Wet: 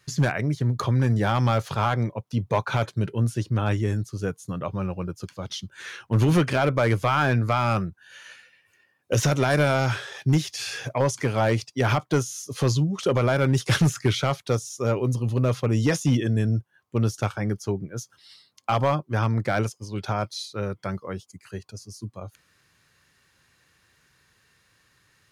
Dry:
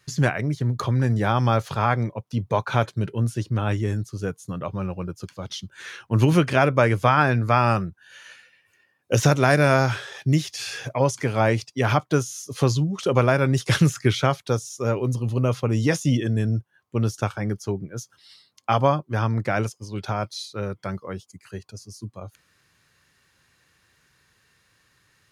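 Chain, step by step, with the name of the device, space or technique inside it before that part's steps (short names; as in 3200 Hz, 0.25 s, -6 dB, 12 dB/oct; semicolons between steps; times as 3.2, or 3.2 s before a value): limiter into clipper (limiter -8 dBFS, peak gain reduction 4 dB; hard clip -13.5 dBFS, distortion -16 dB)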